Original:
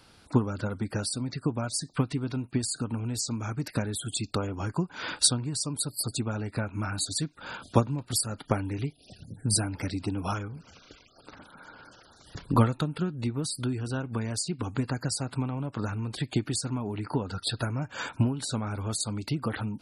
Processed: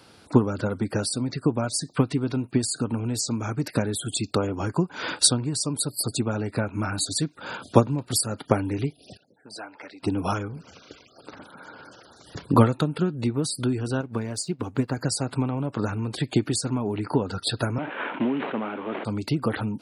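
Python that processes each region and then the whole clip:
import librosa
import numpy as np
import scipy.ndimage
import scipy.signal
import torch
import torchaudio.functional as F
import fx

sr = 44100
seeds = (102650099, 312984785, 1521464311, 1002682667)

y = fx.chain(x, sr, fx.highpass(hz=840.0, slope=12),
    fx.spacing_loss(db_at_10k=30), at=(9.17, 10.03))
y = fx.chain(y, sr, fx.backlash(play_db=-52.5),
    fx.upward_expand(threshold_db=-42.0, expansion=1.5), at=(14.01, 14.97))
y = fx.chain(y, sr, fx.cvsd(bps=16000),
    fx.highpass(hz=220.0, slope=24),
    fx.sustainer(db_per_s=40.0), at=(17.78, 19.05))
y = scipy.signal.sosfilt(scipy.signal.butter(2, 82.0, 'highpass', fs=sr, output='sos'), y)
y = fx.peak_eq(y, sr, hz=430.0, db=4.5, octaves=1.6)
y = y * 10.0 ** (3.5 / 20.0)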